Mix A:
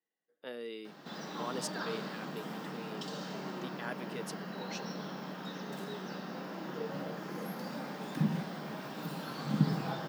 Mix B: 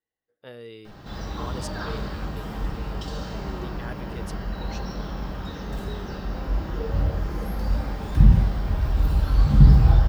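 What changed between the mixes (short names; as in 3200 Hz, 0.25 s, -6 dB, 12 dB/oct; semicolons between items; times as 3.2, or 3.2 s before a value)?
background: send +9.5 dB; master: remove Chebyshev high-pass 160 Hz, order 5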